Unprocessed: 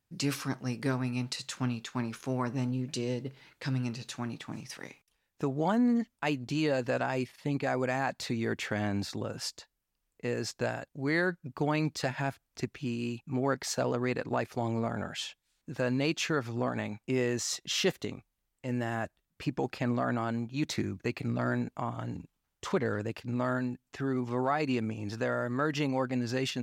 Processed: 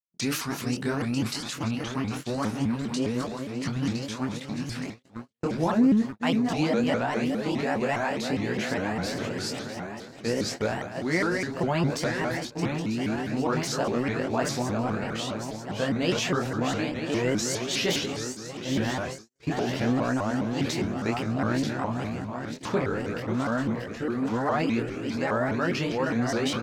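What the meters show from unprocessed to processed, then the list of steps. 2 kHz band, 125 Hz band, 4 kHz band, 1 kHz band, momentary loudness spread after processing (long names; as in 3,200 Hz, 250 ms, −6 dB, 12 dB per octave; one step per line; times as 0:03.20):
+4.5 dB, +3.0 dB, +5.0 dB, +4.5 dB, 7 LU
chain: feedback delay that plays each chunk backwards 470 ms, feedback 72%, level −7 dB
noise gate −38 dBFS, range −56 dB
transient designer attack +2 dB, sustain +7 dB
ambience of single reflections 12 ms −7 dB, 25 ms −4 dB
pitch modulation by a square or saw wave saw up 4.9 Hz, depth 250 cents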